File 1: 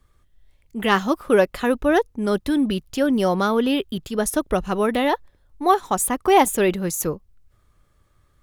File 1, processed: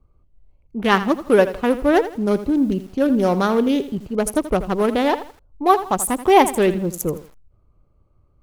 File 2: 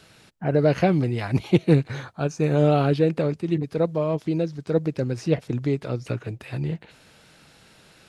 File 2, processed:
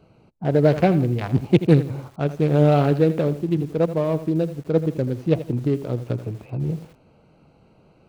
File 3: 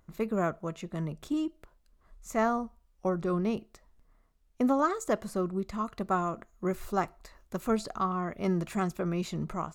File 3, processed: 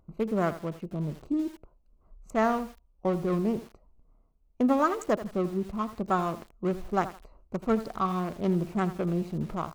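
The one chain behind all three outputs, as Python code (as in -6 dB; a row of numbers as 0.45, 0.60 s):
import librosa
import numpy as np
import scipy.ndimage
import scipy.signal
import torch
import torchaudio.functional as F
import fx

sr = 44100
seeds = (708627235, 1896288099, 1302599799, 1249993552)

y = fx.wiener(x, sr, points=25)
y = fx.echo_crushed(y, sr, ms=82, feedback_pct=35, bits=7, wet_db=-13.0)
y = y * 10.0 ** (2.5 / 20.0)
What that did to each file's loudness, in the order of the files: +2.0, +2.5, +2.0 LU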